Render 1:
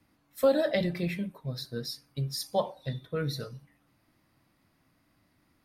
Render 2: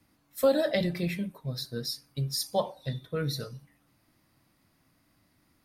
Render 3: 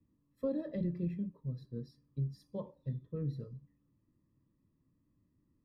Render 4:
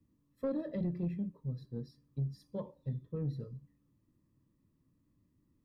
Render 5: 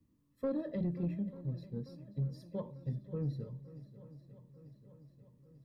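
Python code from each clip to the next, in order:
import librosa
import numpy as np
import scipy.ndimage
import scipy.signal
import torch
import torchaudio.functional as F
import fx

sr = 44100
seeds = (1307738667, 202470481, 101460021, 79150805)

y1 = fx.bass_treble(x, sr, bass_db=1, treble_db=5)
y2 = scipy.signal.lfilter(np.full(60, 1.0 / 60), 1.0, y1)
y2 = y2 * 10.0 ** (-3.5 / 20.0)
y3 = 10.0 ** (-27.5 / 20.0) * np.tanh(y2 / 10.0 ** (-27.5 / 20.0))
y3 = y3 * 10.0 ** (1.5 / 20.0)
y4 = fx.echo_swing(y3, sr, ms=892, ratio=1.5, feedback_pct=57, wet_db=-17)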